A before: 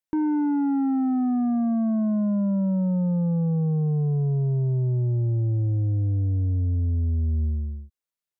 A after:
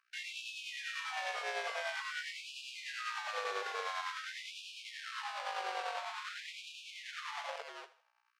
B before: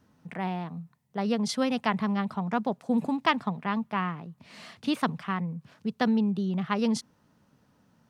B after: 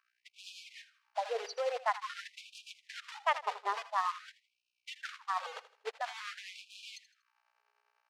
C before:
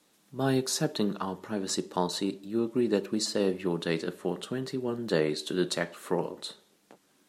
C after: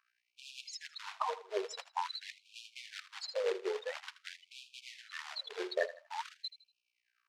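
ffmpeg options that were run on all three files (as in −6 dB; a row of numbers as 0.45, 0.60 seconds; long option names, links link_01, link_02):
-filter_complex "[0:a]afftfilt=real='re*gte(hypot(re,im),0.0794)':imag='im*gte(hypot(re,im),0.0794)':win_size=1024:overlap=0.75,aemphasis=mode=production:type=cd,areverse,acompressor=threshold=-38dB:ratio=5,areverse,aeval=exprs='val(0)+0.000282*(sin(2*PI*60*n/s)+sin(2*PI*2*60*n/s)/2+sin(2*PI*3*60*n/s)/3+sin(2*PI*4*60*n/s)/4+sin(2*PI*5*60*n/s)/5)':channel_layout=same,asplit=2[link_01][link_02];[link_02]adynamicsmooth=sensitivity=1.5:basefreq=1800,volume=1.5dB[link_03];[link_01][link_03]amix=inputs=2:normalize=0,acrusher=bits=3:mode=log:mix=0:aa=0.000001,tremolo=f=10:d=0.41,highpass=270,lowpass=4300,aecho=1:1:80|160|240:0.178|0.064|0.023,afftfilt=real='re*gte(b*sr/1024,370*pow(2400/370,0.5+0.5*sin(2*PI*0.48*pts/sr)))':imag='im*gte(b*sr/1024,370*pow(2400/370,0.5+0.5*sin(2*PI*0.48*pts/sr)))':win_size=1024:overlap=0.75,volume=7dB"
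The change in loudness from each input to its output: −16.5, −9.0, −10.5 LU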